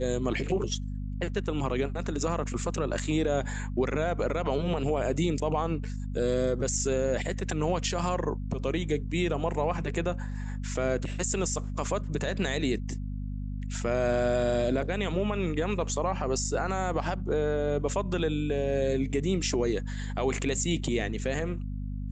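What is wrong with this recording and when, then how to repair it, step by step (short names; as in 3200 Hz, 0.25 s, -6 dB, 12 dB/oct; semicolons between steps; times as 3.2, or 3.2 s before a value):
hum 50 Hz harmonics 5 -34 dBFS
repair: de-hum 50 Hz, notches 5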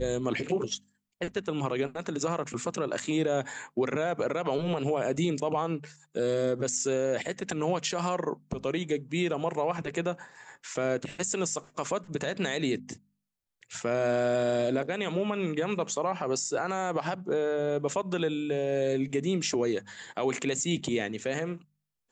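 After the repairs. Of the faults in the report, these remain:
none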